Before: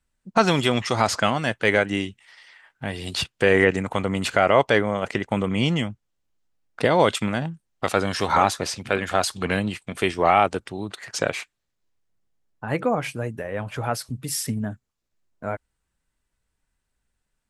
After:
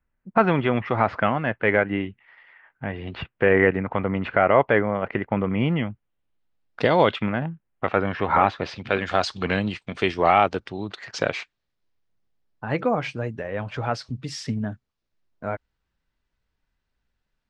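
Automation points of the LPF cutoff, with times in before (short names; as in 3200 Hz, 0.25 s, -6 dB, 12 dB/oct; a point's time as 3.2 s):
LPF 24 dB/oct
5.67 s 2300 Hz
6.86 s 5600 Hz
7.3 s 2500 Hz
8.31 s 2500 Hz
9.04 s 5300 Hz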